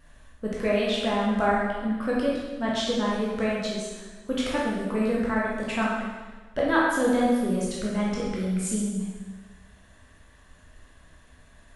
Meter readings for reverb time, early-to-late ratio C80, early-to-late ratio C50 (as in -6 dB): 1.3 s, 2.0 dB, -1.0 dB